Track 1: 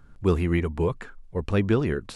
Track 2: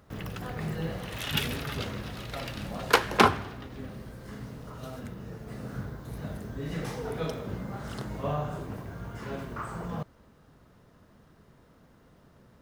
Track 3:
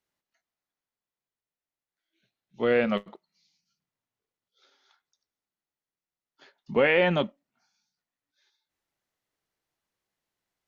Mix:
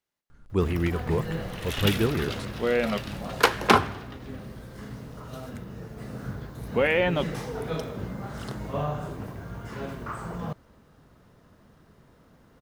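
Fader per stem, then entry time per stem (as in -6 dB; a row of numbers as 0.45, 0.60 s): -2.5, +1.5, -1.5 dB; 0.30, 0.50, 0.00 s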